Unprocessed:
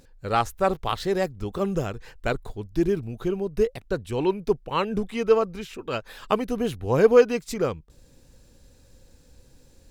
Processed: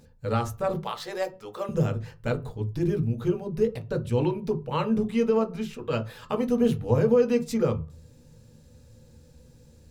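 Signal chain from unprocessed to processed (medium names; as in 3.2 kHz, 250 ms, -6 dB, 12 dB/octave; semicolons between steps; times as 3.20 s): 0.78–1.69 s: high-pass 550 Hz 12 dB/octave; peak limiter -16 dBFS, peak gain reduction 12 dB; on a send: reverberation RT60 0.30 s, pre-delay 3 ms, DRR 3.5 dB; on the sum: trim -3.5 dB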